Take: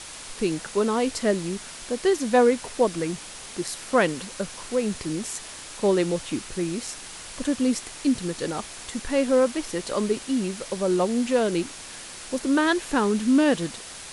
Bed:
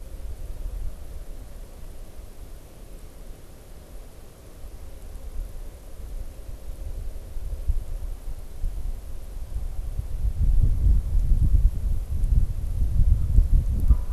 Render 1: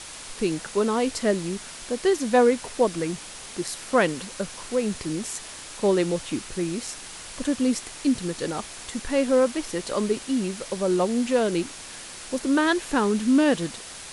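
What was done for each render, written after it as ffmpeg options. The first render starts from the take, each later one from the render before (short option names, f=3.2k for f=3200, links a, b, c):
-af anull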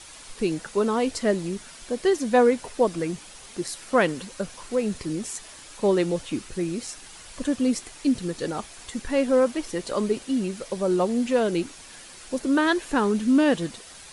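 -af "afftdn=nr=7:nf=-40"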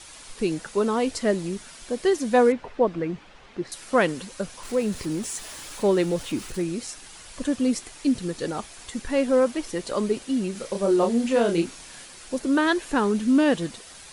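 -filter_complex "[0:a]asettb=1/sr,asplit=3[a][b][c];[a]atrim=end=2.524[d];[b]atrim=start=2.52:end=3.72,asetpts=PTS-STARTPTS,afade=t=in:d=0.004:c=qsin,afade=t=out:st=1.196:d=0.004:c=qsin,lowpass=2.5k[e];[c]atrim=start=3.716[f];[d][e]acrossfade=d=0.004:c1=hsin:c2=qsin[g];[g][f]acrossfade=d=0.004:c1=qsin:c2=hsin,asettb=1/sr,asplit=3[h][i][j];[h]atrim=end=4.634[k];[i]atrim=start=4.63:end=6.62,asetpts=PTS-STARTPTS,afade=t=in:d=0.004:c=qsin,afade=t=out:st=1.986:d=0.004:c=qsin,aeval=exprs='val(0)+0.5*0.0112*sgn(val(0))':c=same[l];[j]atrim=start=6.616[m];[k][l]acrossfade=d=0.004:c1=hsin:c2=qsin[n];[n][m]acrossfade=d=0.004:c1=qsin:c2=hsin,asettb=1/sr,asplit=3[o][p][q];[o]atrim=end=10.524[r];[p]atrim=start=10.52:end=12.06,asetpts=PTS-STARTPTS,afade=t=in:d=0.004:c=qsin,afade=t=out:st=1.536:d=0.004:c=qsin,asplit=2[s][t];[t]adelay=30,volume=-4dB[u];[s][u]amix=inputs=2:normalize=0,atrim=end_sample=67914[v];[q]atrim=start=12.056[w];[r][v]acrossfade=d=0.004:c1=hsin:c2=qsin[x];[x][w]acrossfade=d=0.004:c1=qsin:c2=hsin"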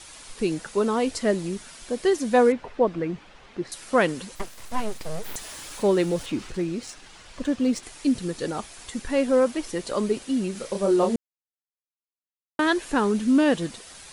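-filter_complex "[0:a]asettb=1/sr,asplit=3[a][b][c];[a]atrim=end=4.354[d];[b]atrim=start=4.35:end=5.36,asetpts=PTS-STARTPTS,afade=t=in:d=0.004:c=qsin,afade=t=out:st=1.006:d=0.004:c=qsin,aeval=exprs='abs(val(0))':c=same[e];[c]atrim=start=5.356[f];[d][e]acrossfade=d=0.004:c1=hsin:c2=qsin[g];[g][f]acrossfade=d=0.004:c1=qsin:c2=hsin,asettb=1/sr,asplit=3[h][i][j];[h]atrim=end=6.264[k];[i]atrim=start=6.26:end=7.83,asetpts=PTS-STARTPTS,afade=t=in:d=0.004:c=qsin,afade=t=out:st=1.566:d=0.004:c=qsin,adynamicsmooth=sensitivity=5.5:basefreq=5.5k[l];[j]atrim=start=7.826[m];[k][l]acrossfade=d=0.004:c1=hsin:c2=qsin[n];[n][m]acrossfade=d=0.004:c1=qsin:c2=hsin,asplit=3[o][p][q];[o]atrim=end=11.16,asetpts=PTS-STARTPTS,afade=t=out:st=11.156:d=0.004:c=hsin[r];[p]atrim=start=11.16:end=12.59,asetpts=PTS-STARTPTS,volume=0[s];[q]atrim=start=12.59,asetpts=PTS-STARTPTS,afade=t=in:d=0.004:c=hsin[t];[r][s][t]concat=n=3:v=0:a=1"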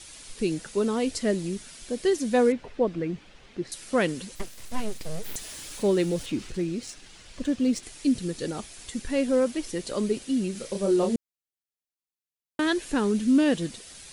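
-af "equalizer=f=1k:w=0.81:g=-8"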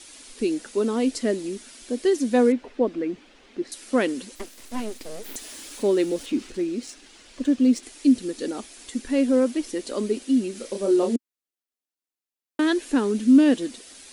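-af "lowshelf=f=200:t=q:w=3:g=-8"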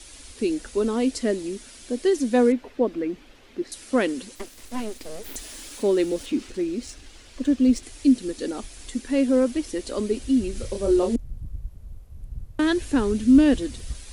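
-filter_complex "[1:a]volume=-15dB[a];[0:a][a]amix=inputs=2:normalize=0"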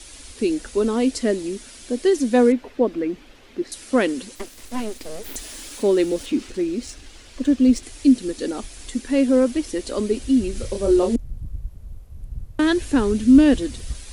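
-af "volume=3dB"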